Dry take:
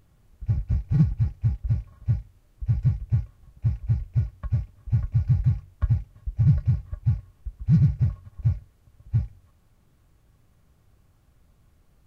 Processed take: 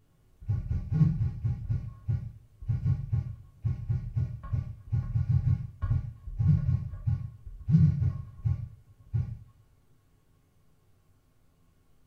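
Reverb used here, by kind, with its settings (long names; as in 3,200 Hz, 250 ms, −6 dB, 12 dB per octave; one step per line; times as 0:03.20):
coupled-rooms reverb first 0.49 s, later 1.8 s, from −26 dB, DRR −4.5 dB
level −9.5 dB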